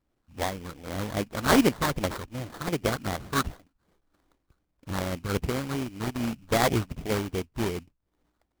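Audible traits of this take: a buzz of ramps at a fixed pitch in blocks of 8 samples; phasing stages 8, 2.6 Hz, lowest notch 620–2200 Hz; aliases and images of a low sample rate 2.7 kHz, jitter 20%; random flutter of the level

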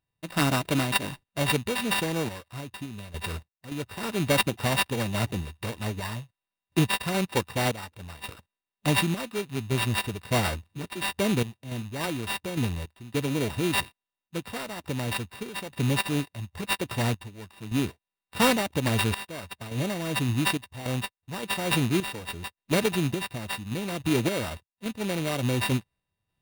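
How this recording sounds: a buzz of ramps at a fixed pitch in blocks of 16 samples; random-step tremolo, depth 85%; aliases and images of a low sample rate 6.5 kHz, jitter 0%

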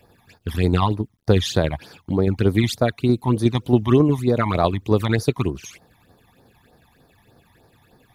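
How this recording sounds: tremolo saw down 11 Hz, depth 40%; a quantiser's noise floor 12-bit, dither none; phasing stages 12, 3.3 Hz, lowest notch 440–2900 Hz

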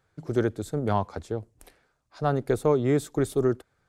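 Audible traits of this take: noise floor -73 dBFS; spectral tilt -6.0 dB/octave

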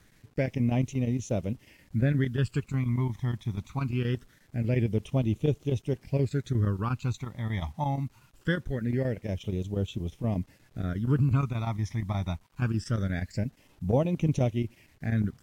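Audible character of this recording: phasing stages 12, 0.23 Hz, lowest notch 470–1600 Hz; chopped level 8.4 Hz, depth 60%, duty 85%; a quantiser's noise floor 10-bit, dither none; Vorbis

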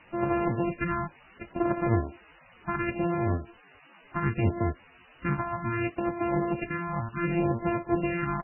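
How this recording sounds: a buzz of ramps at a fixed pitch in blocks of 128 samples; phasing stages 4, 0.68 Hz, lowest notch 410–3600 Hz; a quantiser's noise floor 8-bit, dither triangular; MP3

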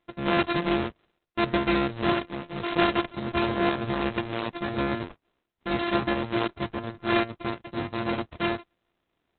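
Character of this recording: a buzz of ramps at a fixed pitch in blocks of 128 samples; Opus

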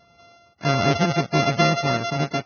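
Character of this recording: a buzz of ramps at a fixed pitch in blocks of 64 samples; Vorbis

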